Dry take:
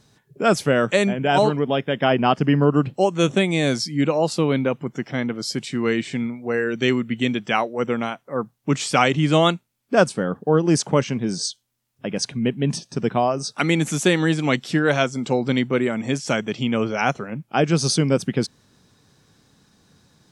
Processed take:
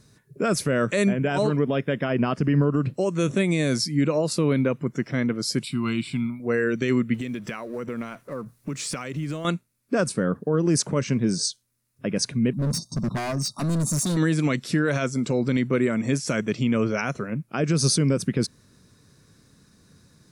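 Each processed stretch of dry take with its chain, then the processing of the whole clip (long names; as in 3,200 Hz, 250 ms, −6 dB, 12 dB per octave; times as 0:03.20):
0:05.63–0:06.40: high-shelf EQ 3,800 Hz +7 dB + phaser with its sweep stopped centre 1,800 Hz, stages 6
0:07.14–0:09.45: mu-law and A-law mismatch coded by mu + downward compressor 10 to 1, threshold −27 dBFS
0:12.53–0:14.17: linear-phase brick-wall band-stop 1,400–3,600 Hz + comb filter 1.1 ms, depth 80% + gain into a clipping stage and back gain 23.5 dB
whole clip: low-shelf EQ 160 Hz +4.5 dB; brickwall limiter −12 dBFS; thirty-one-band graphic EQ 800 Hz −11 dB, 3,150 Hz −8 dB, 10,000 Hz +7 dB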